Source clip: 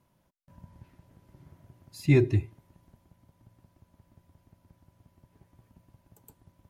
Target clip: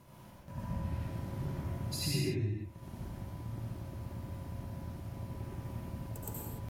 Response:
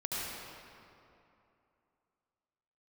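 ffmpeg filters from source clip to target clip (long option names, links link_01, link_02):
-filter_complex "[0:a]acompressor=threshold=-48dB:ratio=16,atempo=1[link_01];[1:a]atrim=start_sample=2205,afade=type=out:start_time=0.35:duration=0.01,atrim=end_sample=15876[link_02];[link_01][link_02]afir=irnorm=-1:irlink=0,volume=13.5dB"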